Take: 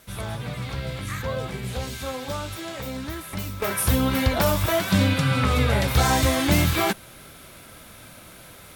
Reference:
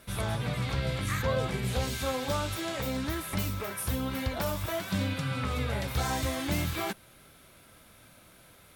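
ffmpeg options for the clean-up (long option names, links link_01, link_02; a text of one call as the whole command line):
ffmpeg -i in.wav -af "agate=range=-21dB:threshold=-38dB,asetnsamples=nb_out_samples=441:pad=0,asendcmd='3.62 volume volume -10.5dB',volume=0dB" out.wav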